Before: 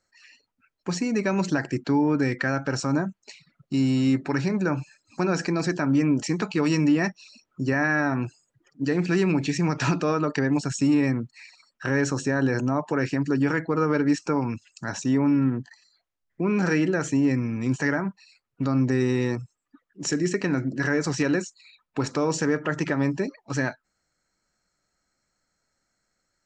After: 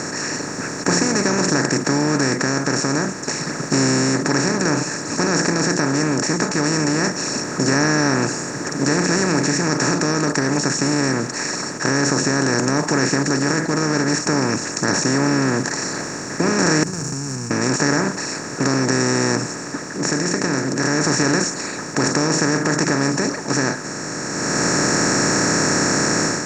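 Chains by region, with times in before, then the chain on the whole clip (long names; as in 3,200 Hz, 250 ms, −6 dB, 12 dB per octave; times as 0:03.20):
0:16.83–0:17.51: running median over 41 samples + downward compressor, threshold −34 dBFS + inverse Chebyshev band-stop filter 290–3,800 Hz, stop band 50 dB
whole clip: compressor on every frequency bin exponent 0.2; drawn EQ curve 2,100 Hz 0 dB, 3,000 Hz −8 dB, 5,400 Hz +7 dB; automatic gain control; level −3.5 dB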